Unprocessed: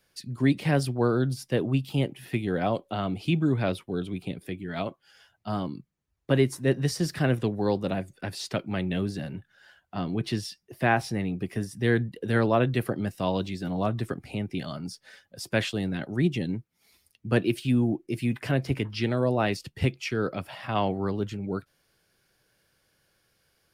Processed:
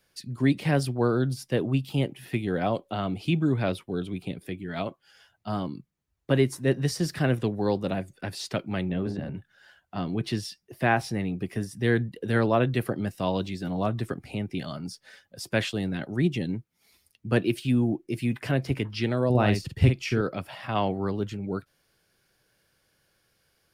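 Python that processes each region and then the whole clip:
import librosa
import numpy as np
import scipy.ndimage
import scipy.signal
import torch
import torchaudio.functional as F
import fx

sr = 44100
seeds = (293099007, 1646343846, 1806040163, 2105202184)

y = fx.chain(x, sr, fx.hum_notches(base_hz=50, count=9),
    fx.transient(attack_db=3, sustain_db=9),
    fx.lowpass(hz=1100.0, slope=6), at=(8.89, 9.35))
y = fx.chain(y, sr, fx.low_shelf(hz=170.0, db=9.5),
    fx.doubler(ms=48.0, db=-6.5), at=(19.3, 20.21))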